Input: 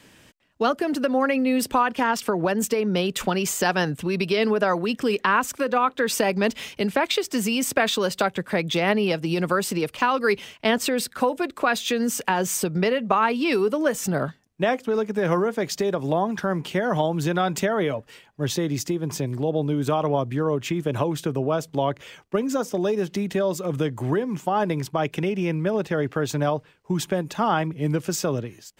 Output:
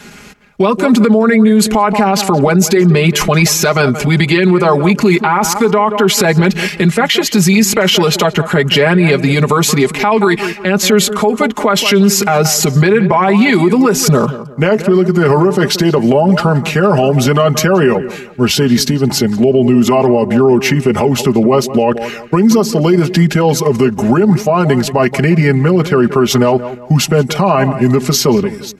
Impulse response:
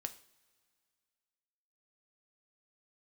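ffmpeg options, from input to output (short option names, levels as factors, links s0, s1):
-filter_complex "[0:a]aecho=1:1:4.1:0.77,asetrate=37084,aresample=44100,atempo=1.18921,asplit=2[s0][s1];[s1]adelay=176,lowpass=f=1800:p=1,volume=0.168,asplit=2[s2][s3];[s3]adelay=176,lowpass=f=1800:p=1,volume=0.33,asplit=2[s4][s5];[s5]adelay=176,lowpass=f=1800:p=1,volume=0.33[s6];[s2][s4][s6]amix=inputs=3:normalize=0[s7];[s0][s7]amix=inputs=2:normalize=0,alimiter=level_in=6.31:limit=0.891:release=50:level=0:latency=1,volume=0.891"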